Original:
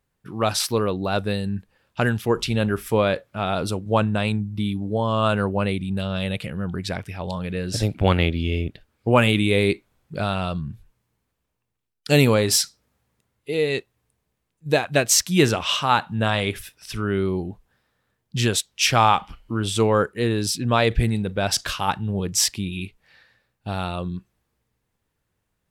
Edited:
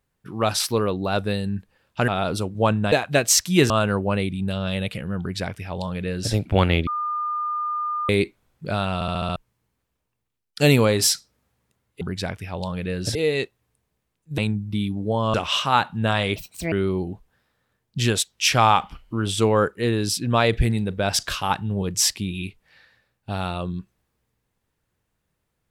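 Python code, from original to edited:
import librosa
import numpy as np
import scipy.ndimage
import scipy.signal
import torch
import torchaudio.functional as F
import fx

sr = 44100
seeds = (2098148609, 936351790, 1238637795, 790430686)

y = fx.edit(x, sr, fx.cut(start_s=2.08, length_s=1.31),
    fx.swap(start_s=4.23, length_s=0.96, other_s=14.73, other_length_s=0.78),
    fx.duplicate(start_s=6.68, length_s=1.14, to_s=13.5),
    fx.bleep(start_s=8.36, length_s=1.22, hz=1210.0, db=-23.0),
    fx.stutter_over(start_s=10.43, slice_s=0.07, count=6),
    fx.speed_span(start_s=16.53, length_s=0.57, speed=1.58), tone=tone)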